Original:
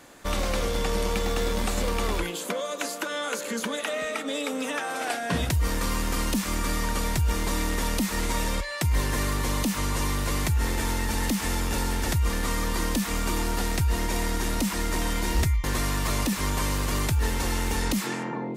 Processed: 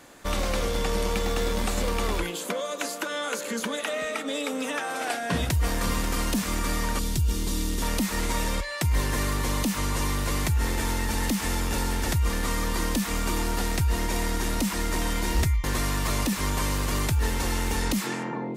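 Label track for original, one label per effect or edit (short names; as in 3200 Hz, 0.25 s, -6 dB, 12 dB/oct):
5.080000	5.510000	echo throw 0.54 s, feedback 50%, level -9.5 dB
6.990000	7.820000	band shelf 1100 Hz -10 dB 2.5 oct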